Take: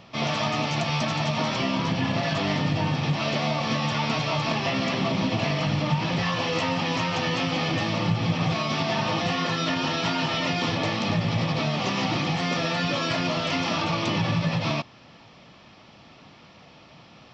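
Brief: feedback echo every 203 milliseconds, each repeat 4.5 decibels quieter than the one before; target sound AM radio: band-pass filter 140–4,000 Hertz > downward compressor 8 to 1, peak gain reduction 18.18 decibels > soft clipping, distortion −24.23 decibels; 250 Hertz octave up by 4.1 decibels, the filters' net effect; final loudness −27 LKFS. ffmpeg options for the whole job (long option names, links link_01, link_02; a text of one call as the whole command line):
ffmpeg -i in.wav -af "highpass=140,lowpass=4000,equalizer=frequency=250:width_type=o:gain=6.5,aecho=1:1:203|406|609|812|1015|1218|1421|1624|1827:0.596|0.357|0.214|0.129|0.0772|0.0463|0.0278|0.0167|0.01,acompressor=threshold=-34dB:ratio=8,asoftclip=threshold=-26.5dB,volume=11dB" out.wav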